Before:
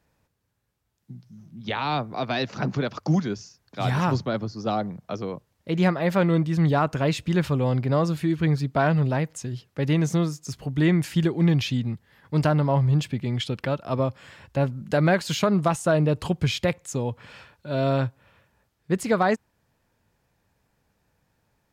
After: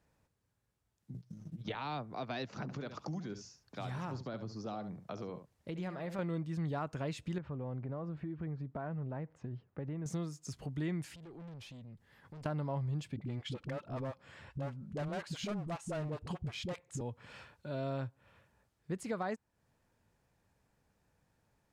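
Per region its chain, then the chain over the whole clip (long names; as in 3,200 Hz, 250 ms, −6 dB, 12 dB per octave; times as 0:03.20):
0:01.14–0:01.75: comb filter 6.5 ms, depth 73% + transient designer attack +8 dB, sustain −10 dB + multiband upward and downward compressor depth 40%
0:02.62–0:06.19: downward compressor 2 to 1, threshold −29 dBFS + single-tap delay 70 ms −11.5 dB
0:07.38–0:10.06: low-pass filter 1,500 Hz + downward compressor 3 to 1, threshold −27 dBFS
0:11.15–0:12.46: tube saturation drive 27 dB, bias 0.3 + downward compressor 16 to 1, threshold −42 dBFS
0:13.16–0:17.01: high-shelf EQ 6,700 Hz −9 dB + gain into a clipping stage and back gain 21.5 dB + all-pass dispersion highs, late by 55 ms, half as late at 360 Hz
whole clip: high-shelf EQ 3,700 Hz −11 dB; downward compressor 2 to 1, threshold −38 dBFS; parametric band 8,700 Hz +9.5 dB 1.6 octaves; level −5 dB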